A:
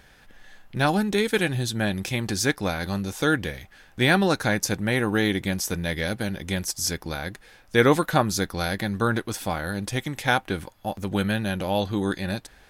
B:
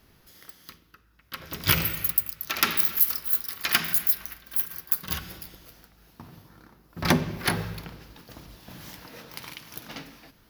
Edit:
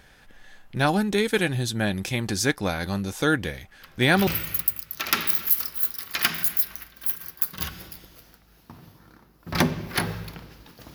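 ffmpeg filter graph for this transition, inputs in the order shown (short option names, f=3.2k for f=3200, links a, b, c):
-filter_complex "[1:a]asplit=2[a][b];[0:a]apad=whole_dur=10.94,atrim=end=10.94,atrim=end=4.272[c];[b]atrim=start=1.768:end=8.44[d];[a]atrim=start=0.92:end=1.77,asetpts=PTS-STARTPTS,volume=-12dB,afade=t=in:d=0.004:c=hsin,afade=t=out:st=0.846:d=0.004:c=hsin,adelay=3420[e];[c][d]acrossfade=d=0.004:c1=hsin:c2=hsin[f];[f][e]amix=inputs=2:normalize=0"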